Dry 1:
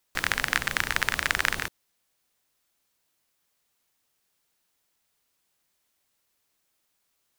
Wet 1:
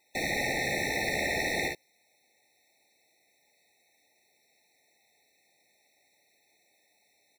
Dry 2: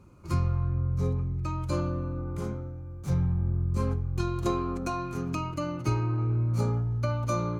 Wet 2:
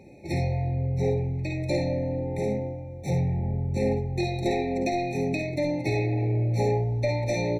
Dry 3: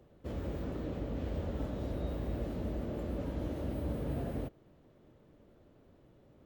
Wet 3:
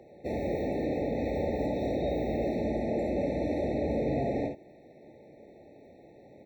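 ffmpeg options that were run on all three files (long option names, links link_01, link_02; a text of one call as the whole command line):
ffmpeg -i in.wav -filter_complex "[0:a]aecho=1:1:53|67:0.422|0.355,asplit=2[link_01][link_02];[link_02]highpass=frequency=720:poles=1,volume=31dB,asoftclip=type=tanh:threshold=-1dB[link_03];[link_01][link_03]amix=inputs=2:normalize=0,lowpass=frequency=2300:poles=1,volume=-6dB,asoftclip=type=tanh:threshold=-5.5dB,afftfilt=real='re*eq(mod(floor(b*sr/1024/890),2),0)':imag='im*eq(mod(floor(b*sr/1024/890),2),0)':win_size=1024:overlap=0.75,volume=-9dB" out.wav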